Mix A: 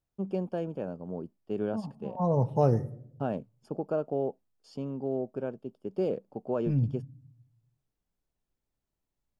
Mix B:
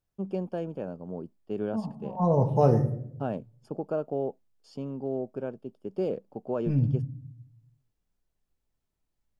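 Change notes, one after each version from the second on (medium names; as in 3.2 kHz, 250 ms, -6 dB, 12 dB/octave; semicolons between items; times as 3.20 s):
second voice: send +11.0 dB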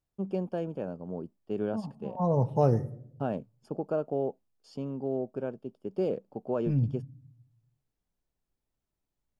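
second voice: send -10.5 dB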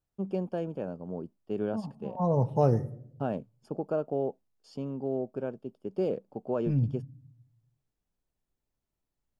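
no change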